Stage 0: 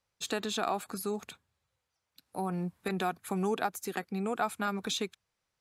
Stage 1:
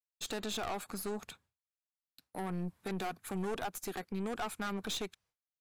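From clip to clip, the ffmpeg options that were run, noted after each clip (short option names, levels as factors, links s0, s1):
-af "agate=range=0.0224:threshold=0.001:ratio=3:detection=peak,aeval=exprs='(tanh(50.1*val(0)+0.55)-tanh(0.55))/50.1':c=same,volume=1.12"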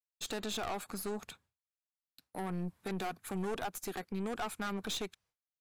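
-af anull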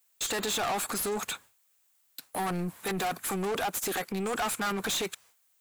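-filter_complex "[0:a]aexciter=amount=2.9:drive=3.6:freq=6900,asplit=2[s0][s1];[s1]highpass=f=720:p=1,volume=25.1,asoftclip=type=tanh:threshold=0.0708[s2];[s0][s2]amix=inputs=2:normalize=0,lowpass=f=8000:p=1,volume=0.501"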